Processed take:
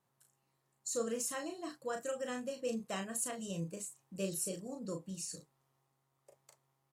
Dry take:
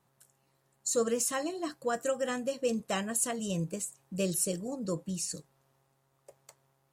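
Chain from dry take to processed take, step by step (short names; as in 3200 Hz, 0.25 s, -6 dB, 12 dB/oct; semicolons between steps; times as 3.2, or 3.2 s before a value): low shelf 80 Hz -6.5 dB; doubler 36 ms -5.5 dB; gain -8 dB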